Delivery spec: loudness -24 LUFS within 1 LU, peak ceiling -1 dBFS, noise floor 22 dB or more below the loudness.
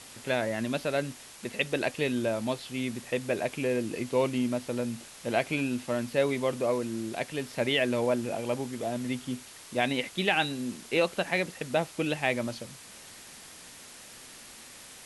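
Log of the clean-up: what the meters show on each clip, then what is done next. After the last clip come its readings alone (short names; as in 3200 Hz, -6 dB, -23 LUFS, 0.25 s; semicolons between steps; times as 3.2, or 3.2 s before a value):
noise floor -49 dBFS; noise floor target -52 dBFS; loudness -30.0 LUFS; peak -11.5 dBFS; loudness target -24.0 LUFS
-> noise print and reduce 6 dB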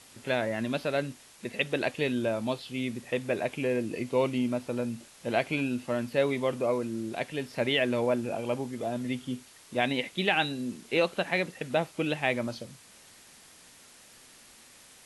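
noise floor -55 dBFS; loudness -30.0 LUFS; peak -11.0 dBFS; loudness target -24.0 LUFS
-> gain +6 dB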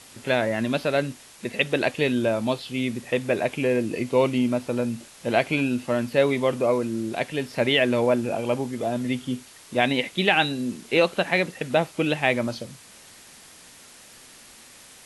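loudness -24.0 LUFS; peak -5.0 dBFS; noise floor -49 dBFS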